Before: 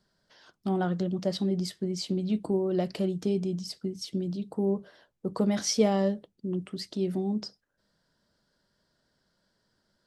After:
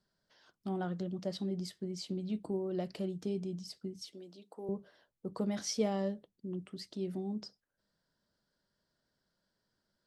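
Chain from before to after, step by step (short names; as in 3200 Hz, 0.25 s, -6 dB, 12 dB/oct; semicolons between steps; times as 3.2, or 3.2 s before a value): 4.12–4.69 HPF 490 Hz 12 dB/oct; gain -8.5 dB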